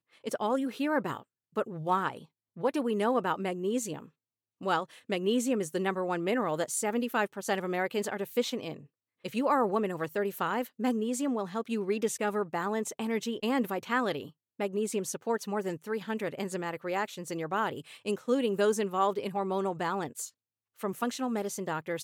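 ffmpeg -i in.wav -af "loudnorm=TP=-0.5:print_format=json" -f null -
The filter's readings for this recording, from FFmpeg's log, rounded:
"input_i" : "-31.8",
"input_tp" : "-14.3",
"input_lra" : "3.0",
"input_thresh" : "-42.0",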